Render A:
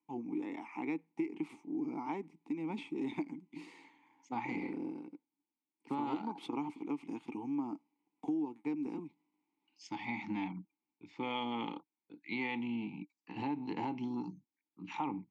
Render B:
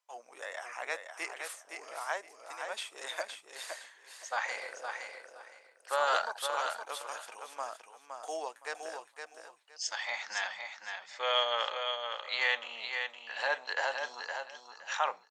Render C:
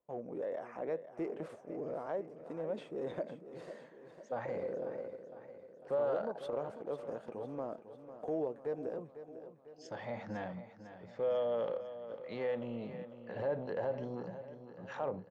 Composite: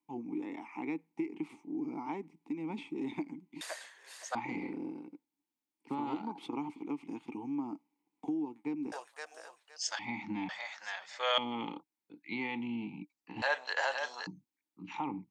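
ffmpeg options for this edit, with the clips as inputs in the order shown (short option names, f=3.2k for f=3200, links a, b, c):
-filter_complex "[1:a]asplit=4[a][b][c][d];[0:a]asplit=5[e][f][g][h][i];[e]atrim=end=3.612[j];[a]atrim=start=3.608:end=4.352[k];[f]atrim=start=4.348:end=8.922[l];[b]atrim=start=8.918:end=9.992[m];[g]atrim=start=9.988:end=10.492[n];[c]atrim=start=10.488:end=11.382[o];[h]atrim=start=11.378:end=13.422[p];[d]atrim=start=13.418:end=14.272[q];[i]atrim=start=14.268[r];[j][k]acrossfade=d=0.004:c1=hsin:c2=hsin[s];[s][l]acrossfade=d=0.004:c1=hsin:c2=hsin[t];[t][m]acrossfade=d=0.004:c1=hsin:c2=hsin[u];[u][n]acrossfade=d=0.004:c1=hsin:c2=hsin[v];[v][o]acrossfade=d=0.004:c1=hsin:c2=hsin[w];[w][p]acrossfade=d=0.004:c1=hsin:c2=hsin[x];[x][q]acrossfade=d=0.004:c1=hsin:c2=hsin[y];[y][r]acrossfade=d=0.004:c1=hsin:c2=hsin"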